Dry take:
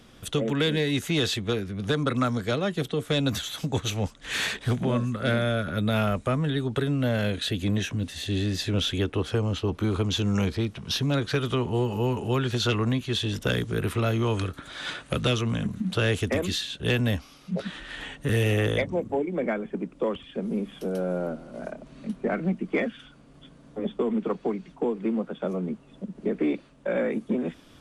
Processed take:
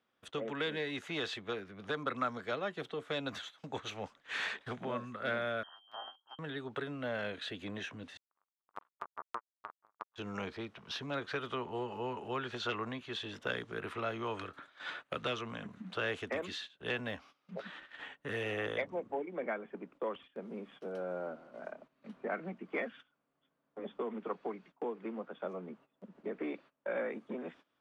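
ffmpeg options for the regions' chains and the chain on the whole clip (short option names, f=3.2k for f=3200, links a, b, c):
-filter_complex "[0:a]asettb=1/sr,asplit=3[a][b][c];[a]atrim=end=5.634[d];[b]atrim=start=5.63:end=6.39,asetpts=PTS-STARTPTS,afade=t=in:d=0.004:c=qsin,afade=t=out:st=0.756:d=0.004:c=qsin,lowpass=f=2.8k:t=q:w=0.5098,lowpass=f=2.8k:t=q:w=0.6013,lowpass=f=2.8k:t=q:w=0.9,lowpass=f=2.8k:t=q:w=2.563,afreqshift=-3300,asuperstop=centerf=2300:order=8:qfactor=1.1[e];[c]atrim=start=6.386[f];[d][e]acrossfade=d=0.004:c1=hsin:c2=qsin[g];[g][f]acrossfade=d=0.004:c1=qsin:c2=hsin,asettb=1/sr,asplit=3[h][i][j];[h]atrim=end=8.174[k];[i]atrim=start=8.17:end=10.16,asetpts=PTS-STARTPTS,afade=t=in:d=0.004:c=qsin,afade=t=out:st=1.986:d=0.004:c=qsin,equalizer=f=80:t=o:w=1:g=-11,acrusher=bits=2:mix=0:aa=0.5,lowpass=f=1.2k:t=q:w=3.8[l];[j]atrim=start=10.156[m];[k][l]acrossfade=d=0.004:c1=hsin:c2=qsin[n];[n][m]acrossfade=d=0.004:c1=qsin:c2=hsin,lowpass=1.2k,agate=range=-16dB:threshold=-43dB:ratio=16:detection=peak,aderivative,volume=13dB"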